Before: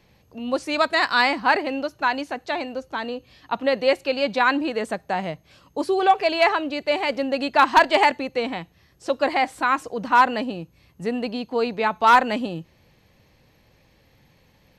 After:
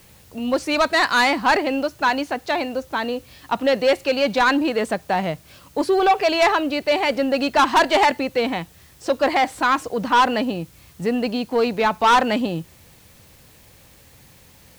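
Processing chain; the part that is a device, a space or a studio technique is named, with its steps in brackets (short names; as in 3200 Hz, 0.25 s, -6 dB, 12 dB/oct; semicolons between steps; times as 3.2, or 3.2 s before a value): open-reel tape (soft clip -15.5 dBFS, distortion -11 dB; bell 78 Hz +3.5 dB 0.97 oct; white noise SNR 32 dB); gain +5 dB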